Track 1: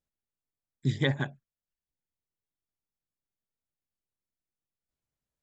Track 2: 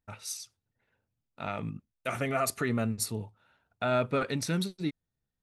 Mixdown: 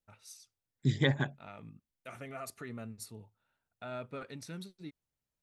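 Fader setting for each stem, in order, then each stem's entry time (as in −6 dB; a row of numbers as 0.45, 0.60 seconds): −1.0, −14.0 decibels; 0.00, 0.00 seconds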